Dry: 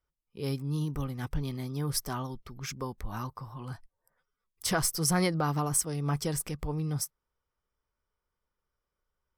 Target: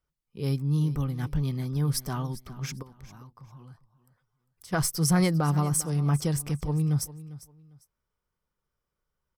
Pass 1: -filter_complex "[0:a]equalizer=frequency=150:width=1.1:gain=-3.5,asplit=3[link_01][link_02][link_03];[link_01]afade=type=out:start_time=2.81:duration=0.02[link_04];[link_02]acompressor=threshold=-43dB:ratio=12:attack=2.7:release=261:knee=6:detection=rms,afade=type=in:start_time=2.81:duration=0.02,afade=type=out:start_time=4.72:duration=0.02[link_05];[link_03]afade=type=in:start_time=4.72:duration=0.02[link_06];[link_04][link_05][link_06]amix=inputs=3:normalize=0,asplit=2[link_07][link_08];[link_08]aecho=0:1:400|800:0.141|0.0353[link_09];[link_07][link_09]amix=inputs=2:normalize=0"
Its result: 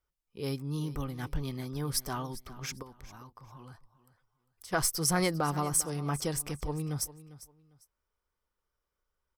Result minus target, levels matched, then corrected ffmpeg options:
125 Hz band −5.0 dB
-filter_complex "[0:a]equalizer=frequency=150:width=1.1:gain=7,asplit=3[link_01][link_02][link_03];[link_01]afade=type=out:start_time=2.81:duration=0.02[link_04];[link_02]acompressor=threshold=-43dB:ratio=12:attack=2.7:release=261:knee=6:detection=rms,afade=type=in:start_time=2.81:duration=0.02,afade=type=out:start_time=4.72:duration=0.02[link_05];[link_03]afade=type=in:start_time=4.72:duration=0.02[link_06];[link_04][link_05][link_06]amix=inputs=3:normalize=0,asplit=2[link_07][link_08];[link_08]aecho=0:1:400|800:0.141|0.0353[link_09];[link_07][link_09]amix=inputs=2:normalize=0"

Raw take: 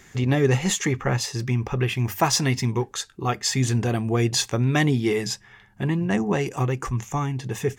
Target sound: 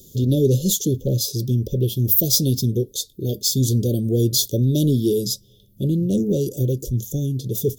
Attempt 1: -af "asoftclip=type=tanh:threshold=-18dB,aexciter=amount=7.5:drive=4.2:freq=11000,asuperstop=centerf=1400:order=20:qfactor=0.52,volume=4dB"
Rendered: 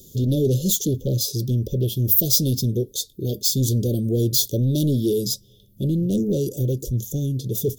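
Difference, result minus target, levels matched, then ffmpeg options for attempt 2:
soft clipping: distortion +9 dB
-af "asoftclip=type=tanh:threshold=-11dB,aexciter=amount=7.5:drive=4.2:freq=11000,asuperstop=centerf=1400:order=20:qfactor=0.52,volume=4dB"

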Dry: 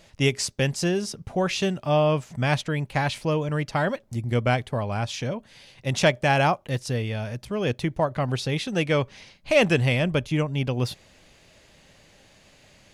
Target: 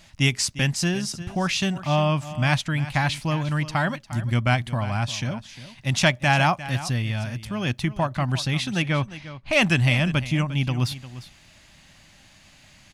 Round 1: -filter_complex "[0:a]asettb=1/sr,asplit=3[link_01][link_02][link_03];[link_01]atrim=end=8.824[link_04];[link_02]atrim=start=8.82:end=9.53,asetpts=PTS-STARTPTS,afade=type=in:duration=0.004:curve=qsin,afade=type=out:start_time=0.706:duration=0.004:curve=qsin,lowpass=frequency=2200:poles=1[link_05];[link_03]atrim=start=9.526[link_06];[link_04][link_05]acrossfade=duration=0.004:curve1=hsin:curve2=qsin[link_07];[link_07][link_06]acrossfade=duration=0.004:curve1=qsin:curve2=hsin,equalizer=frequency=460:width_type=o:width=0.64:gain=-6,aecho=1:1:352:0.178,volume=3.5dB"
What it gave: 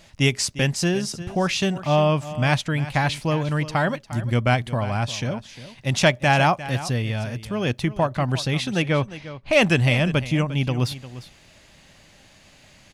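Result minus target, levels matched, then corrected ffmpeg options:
500 Hz band +4.5 dB
-filter_complex "[0:a]asettb=1/sr,asplit=3[link_01][link_02][link_03];[link_01]atrim=end=8.824[link_04];[link_02]atrim=start=8.82:end=9.53,asetpts=PTS-STARTPTS,afade=type=in:duration=0.004:curve=qsin,afade=type=out:start_time=0.706:duration=0.004:curve=qsin,lowpass=frequency=2200:poles=1[link_05];[link_03]atrim=start=9.526[link_06];[link_04][link_05]acrossfade=duration=0.004:curve1=hsin:curve2=qsin[link_07];[link_07][link_06]acrossfade=duration=0.004:curve1=qsin:curve2=hsin,equalizer=frequency=460:width_type=o:width=0.64:gain=-17.5,aecho=1:1:352:0.178,volume=3.5dB"

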